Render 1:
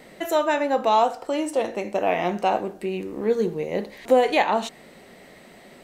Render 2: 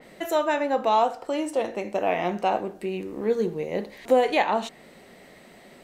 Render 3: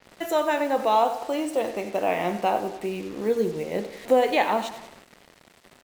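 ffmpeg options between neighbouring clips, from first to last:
-af "adynamicequalizer=threshold=0.00891:dfrequency=4100:dqfactor=0.7:tfrequency=4100:tqfactor=0.7:attack=5:release=100:ratio=0.375:range=2:mode=cutabove:tftype=highshelf,volume=0.794"
-af "aecho=1:1:94|188|282|376|470:0.224|0.119|0.0629|0.0333|0.0177,acrusher=bits=6:mix=0:aa=0.5"

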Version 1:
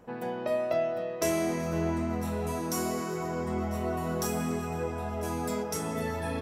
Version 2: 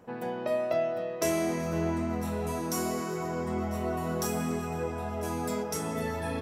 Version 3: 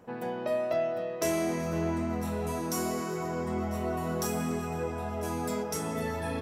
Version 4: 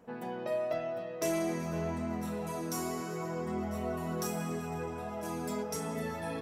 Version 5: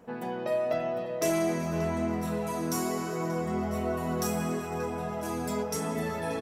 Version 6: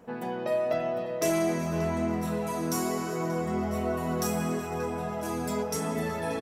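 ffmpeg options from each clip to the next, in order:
-af "highpass=60"
-af "asoftclip=type=tanh:threshold=0.133"
-af "flanger=delay=4.3:depth=3:regen=-40:speed=0.52:shape=triangular"
-filter_complex "[0:a]asplit=2[s0][s1];[s1]adelay=583.1,volume=0.355,highshelf=f=4000:g=-13.1[s2];[s0][s2]amix=inputs=2:normalize=0,volume=1.68"
-af "aecho=1:1:370:0.0708,volume=1.12"

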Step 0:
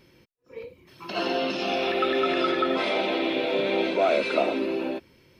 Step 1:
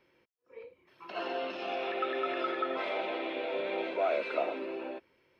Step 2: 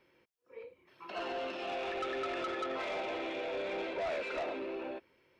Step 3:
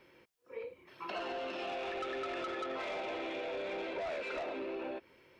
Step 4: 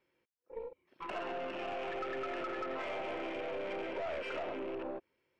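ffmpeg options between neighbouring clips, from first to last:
-filter_complex "[0:a]acrossover=split=370 2900:gain=0.2 1 0.2[s0][s1][s2];[s0][s1][s2]amix=inputs=3:normalize=0,volume=0.473"
-af "asoftclip=type=tanh:threshold=0.0251"
-af "acompressor=threshold=0.00631:ratio=6,volume=2.11"
-af "afwtdn=0.00447,aeval=exprs='0.0335*(cos(1*acos(clip(val(0)/0.0335,-1,1)))-cos(1*PI/2))+0.00299*(cos(6*acos(clip(val(0)/0.0335,-1,1)))-cos(6*PI/2))+0.00075*(cos(8*acos(clip(val(0)/0.0335,-1,1)))-cos(8*PI/2))':c=same"

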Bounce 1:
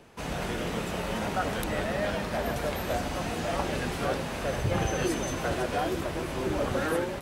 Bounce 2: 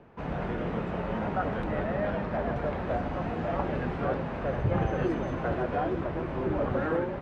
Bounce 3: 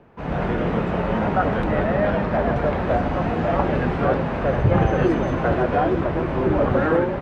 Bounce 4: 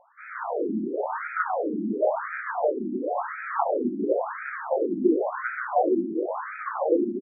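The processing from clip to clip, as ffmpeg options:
-af "lowpass=1600,equalizer=f=150:w=1.5:g=2.5"
-af "dynaudnorm=f=180:g=3:m=2.24,volume=1.33"
-filter_complex "[0:a]asplit=2[s0][s1];[s1]adelay=130,highpass=300,lowpass=3400,asoftclip=type=hard:threshold=0.158,volume=0.501[s2];[s0][s2]amix=inputs=2:normalize=0,afftfilt=real='re*between(b*sr/1024,260*pow(1800/260,0.5+0.5*sin(2*PI*0.95*pts/sr))/1.41,260*pow(1800/260,0.5+0.5*sin(2*PI*0.95*pts/sr))*1.41)':imag='im*between(b*sr/1024,260*pow(1800/260,0.5+0.5*sin(2*PI*0.95*pts/sr))/1.41,260*pow(1800/260,0.5+0.5*sin(2*PI*0.95*pts/sr))*1.41)':win_size=1024:overlap=0.75"

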